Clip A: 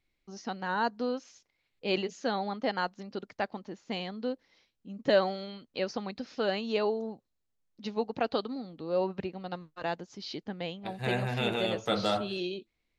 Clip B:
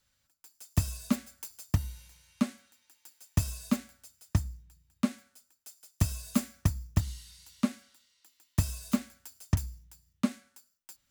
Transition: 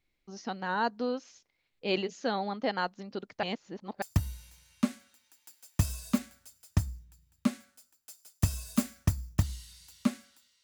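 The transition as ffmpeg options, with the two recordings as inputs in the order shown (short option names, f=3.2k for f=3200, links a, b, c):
-filter_complex "[0:a]apad=whole_dur=10.63,atrim=end=10.63,asplit=2[a][b];[a]atrim=end=3.432[c];[b]atrim=start=3.428:end=4.022,asetpts=PTS-STARTPTS,areverse[d];[1:a]atrim=start=1.598:end=8.21[e];[c][d]acrossfade=d=0.004:c1=hsin:c2=hsin[f];[f][e]acrossfade=d=0.004:c1=hsin:c2=hsin"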